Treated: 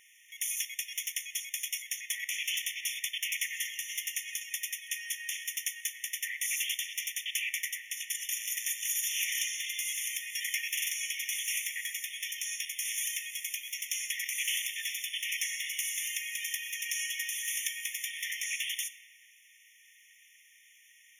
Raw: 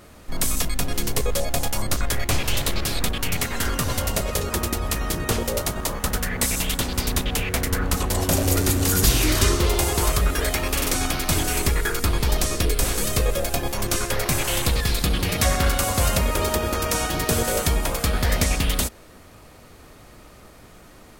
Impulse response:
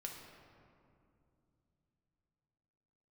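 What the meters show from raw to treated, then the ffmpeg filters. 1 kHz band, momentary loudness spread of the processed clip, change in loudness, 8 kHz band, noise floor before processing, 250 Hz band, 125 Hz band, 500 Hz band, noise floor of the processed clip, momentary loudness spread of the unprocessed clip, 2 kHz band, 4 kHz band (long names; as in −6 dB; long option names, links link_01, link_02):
below −40 dB, 5 LU, −10.0 dB, −7.0 dB, −47 dBFS, below −40 dB, below −40 dB, below −40 dB, −60 dBFS, 6 LU, −6.0 dB, −7.5 dB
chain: -filter_complex "[0:a]alimiter=limit=-11.5dB:level=0:latency=1:release=124,asplit=2[link_01][link_02];[1:a]atrim=start_sample=2205[link_03];[link_02][link_03]afir=irnorm=-1:irlink=0,volume=-2.5dB[link_04];[link_01][link_04]amix=inputs=2:normalize=0,afftfilt=real='re*eq(mod(floor(b*sr/1024/1800),2),1)':imag='im*eq(mod(floor(b*sr/1024/1800),2),1)':win_size=1024:overlap=0.75,volume=-6dB"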